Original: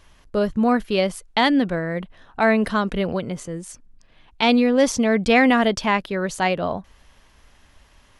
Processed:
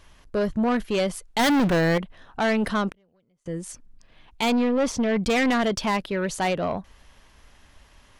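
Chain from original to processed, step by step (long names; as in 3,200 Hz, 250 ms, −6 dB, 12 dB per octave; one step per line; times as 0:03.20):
0:01.39–0:01.98: leveller curve on the samples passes 3
0:04.49–0:05.23: high-shelf EQ 7,300 Hz → 4,100 Hz −10 dB
soft clipping −18 dBFS, distortion −9 dB
0:02.88–0:03.46: gate with flip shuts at −28 dBFS, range −38 dB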